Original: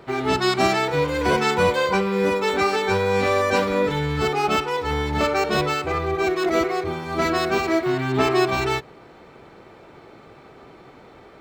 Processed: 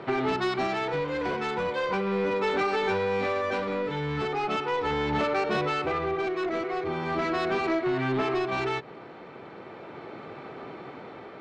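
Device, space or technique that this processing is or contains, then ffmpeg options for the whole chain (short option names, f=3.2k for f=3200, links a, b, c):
AM radio: -af "highpass=130,lowpass=3.5k,acompressor=threshold=-27dB:ratio=6,asoftclip=type=tanh:threshold=-25dB,tremolo=f=0.38:d=0.32,volume=5.5dB"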